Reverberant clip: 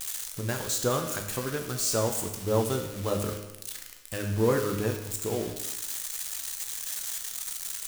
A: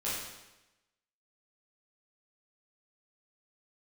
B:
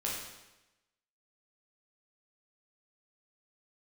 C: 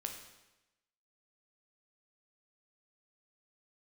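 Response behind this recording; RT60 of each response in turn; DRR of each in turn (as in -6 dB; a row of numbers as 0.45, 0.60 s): C; 1.0, 1.0, 1.0 s; -9.5, -5.0, 3.0 dB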